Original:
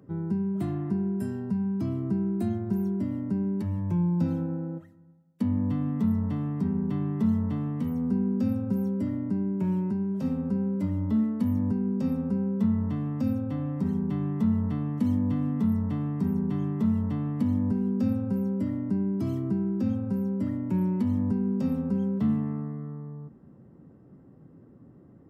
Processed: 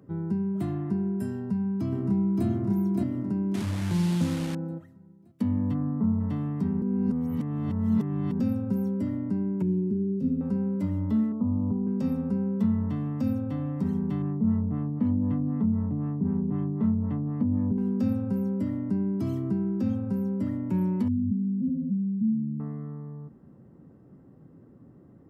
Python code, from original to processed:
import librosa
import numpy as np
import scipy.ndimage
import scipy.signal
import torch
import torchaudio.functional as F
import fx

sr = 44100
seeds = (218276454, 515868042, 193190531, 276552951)

y = fx.echo_throw(x, sr, start_s=1.35, length_s=1.11, ms=570, feedback_pct=45, wet_db=-2.0)
y = fx.delta_mod(y, sr, bps=64000, step_db=-32.0, at=(3.54, 4.55))
y = fx.lowpass(y, sr, hz=fx.line((5.73, 1700.0), (6.19, 1200.0)), slope=24, at=(5.73, 6.19), fade=0.02)
y = fx.curve_eq(y, sr, hz=(170.0, 390.0, 640.0, 1000.0, 2800.0), db=(0, 5, -19, -23, -14), at=(9.62, 10.41))
y = fx.cheby1_lowpass(y, sr, hz=1200.0, order=5, at=(11.32, 11.87))
y = fx.filter_lfo_lowpass(y, sr, shape='sine', hz=3.9, low_hz=500.0, high_hz=2200.0, q=0.7, at=(14.22, 17.78))
y = fx.spec_expand(y, sr, power=2.6, at=(21.08, 22.6))
y = fx.edit(y, sr, fx.reverse_span(start_s=6.82, length_s=1.58), tone=tone)